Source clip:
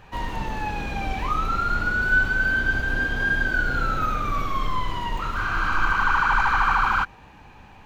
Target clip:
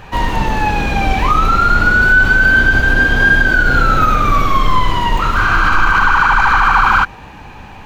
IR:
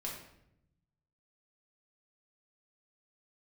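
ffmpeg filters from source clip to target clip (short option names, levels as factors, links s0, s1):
-af "alimiter=level_in=5.01:limit=0.891:release=50:level=0:latency=1,volume=0.891"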